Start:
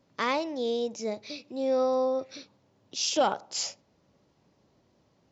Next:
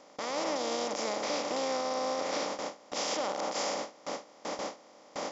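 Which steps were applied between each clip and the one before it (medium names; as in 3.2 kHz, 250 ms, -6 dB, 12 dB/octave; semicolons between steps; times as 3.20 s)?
spectral levelling over time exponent 0.2; peak limiter -13.5 dBFS, peak gain reduction 10 dB; gate with hold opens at -15 dBFS; trim -9 dB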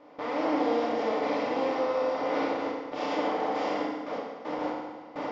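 FDN reverb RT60 1.4 s, low-frequency decay 1×, high-frequency decay 0.85×, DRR -5.5 dB; short-mantissa float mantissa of 4-bit; distance through air 380 m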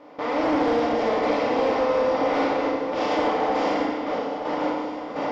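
Chebyshev shaper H 5 -23 dB, 7 -25 dB, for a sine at -15 dBFS; sine folder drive 4 dB, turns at -15 dBFS; delay with an opening low-pass 305 ms, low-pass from 200 Hz, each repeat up 2 oct, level -6 dB; trim -1.5 dB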